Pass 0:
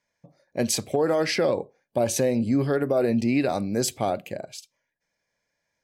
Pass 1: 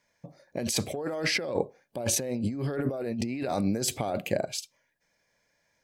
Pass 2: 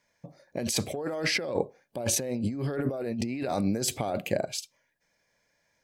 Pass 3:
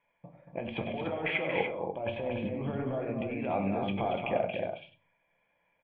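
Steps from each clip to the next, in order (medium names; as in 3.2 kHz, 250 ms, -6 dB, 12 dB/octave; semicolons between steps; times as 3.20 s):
compressor with a negative ratio -30 dBFS, ratio -1
no audible change
rippled Chebyshev low-pass 3.4 kHz, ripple 9 dB; loudspeakers at several distances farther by 33 m -11 dB, 79 m -6 dB, 100 m -6 dB; reverberation RT60 0.35 s, pre-delay 6 ms, DRR 6.5 dB; trim +1.5 dB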